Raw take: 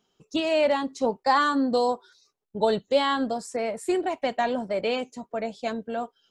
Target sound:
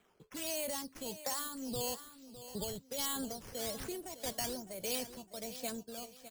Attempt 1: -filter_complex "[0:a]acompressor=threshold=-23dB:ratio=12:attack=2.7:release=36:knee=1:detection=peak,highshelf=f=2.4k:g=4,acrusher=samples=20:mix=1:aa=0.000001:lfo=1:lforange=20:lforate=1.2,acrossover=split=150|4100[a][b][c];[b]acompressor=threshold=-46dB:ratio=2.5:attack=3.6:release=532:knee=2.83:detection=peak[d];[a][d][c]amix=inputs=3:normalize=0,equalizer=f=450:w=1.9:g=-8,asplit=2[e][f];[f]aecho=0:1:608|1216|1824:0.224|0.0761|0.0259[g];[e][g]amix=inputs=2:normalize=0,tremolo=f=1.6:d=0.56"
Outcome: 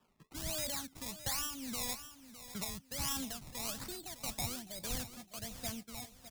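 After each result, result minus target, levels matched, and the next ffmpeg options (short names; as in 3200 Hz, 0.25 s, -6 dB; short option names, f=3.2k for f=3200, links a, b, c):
500 Hz band -7.5 dB; decimation with a swept rate: distortion +8 dB
-filter_complex "[0:a]acompressor=threshold=-23dB:ratio=12:attack=2.7:release=36:knee=1:detection=peak,highshelf=f=2.4k:g=4,acrusher=samples=20:mix=1:aa=0.000001:lfo=1:lforange=20:lforate=1.2,acrossover=split=150|4100[a][b][c];[b]acompressor=threshold=-46dB:ratio=2.5:attack=3.6:release=532:knee=2.83:detection=peak[d];[a][d][c]amix=inputs=3:normalize=0,equalizer=f=450:w=1.9:g=3,asplit=2[e][f];[f]aecho=0:1:608|1216|1824:0.224|0.0761|0.0259[g];[e][g]amix=inputs=2:normalize=0,tremolo=f=1.6:d=0.56"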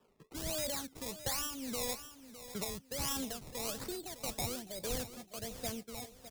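decimation with a swept rate: distortion +8 dB
-filter_complex "[0:a]acompressor=threshold=-23dB:ratio=12:attack=2.7:release=36:knee=1:detection=peak,highshelf=f=2.4k:g=4,acrusher=samples=8:mix=1:aa=0.000001:lfo=1:lforange=8:lforate=1.2,acrossover=split=150|4100[a][b][c];[b]acompressor=threshold=-46dB:ratio=2.5:attack=3.6:release=532:knee=2.83:detection=peak[d];[a][d][c]amix=inputs=3:normalize=0,equalizer=f=450:w=1.9:g=3,asplit=2[e][f];[f]aecho=0:1:608|1216|1824:0.224|0.0761|0.0259[g];[e][g]amix=inputs=2:normalize=0,tremolo=f=1.6:d=0.56"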